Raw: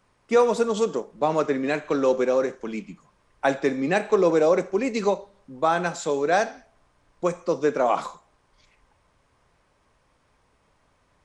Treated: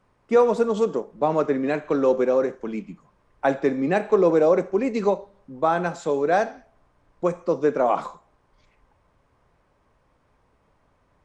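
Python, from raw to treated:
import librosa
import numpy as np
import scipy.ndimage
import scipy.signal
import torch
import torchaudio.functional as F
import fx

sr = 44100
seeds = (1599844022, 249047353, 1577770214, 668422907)

y = fx.high_shelf(x, sr, hz=2200.0, db=-11.0)
y = F.gain(torch.from_numpy(y), 2.0).numpy()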